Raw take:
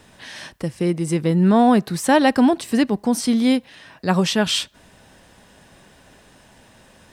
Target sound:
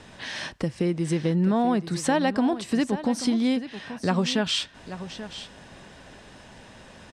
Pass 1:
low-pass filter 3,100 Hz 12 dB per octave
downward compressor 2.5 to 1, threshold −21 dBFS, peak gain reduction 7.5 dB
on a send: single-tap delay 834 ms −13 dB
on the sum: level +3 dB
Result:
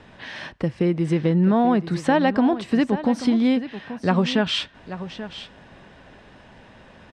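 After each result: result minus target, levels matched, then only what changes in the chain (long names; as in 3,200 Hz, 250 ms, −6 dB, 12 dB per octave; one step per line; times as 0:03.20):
8,000 Hz band −12.5 dB; downward compressor: peak gain reduction −4 dB
change: low-pass filter 6,800 Hz 12 dB per octave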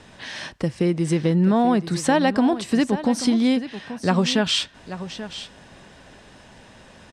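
downward compressor: peak gain reduction −4 dB
change: downward compressor 2.5 to 1, threshold −28 dBFS, peak gain reduction 12 dB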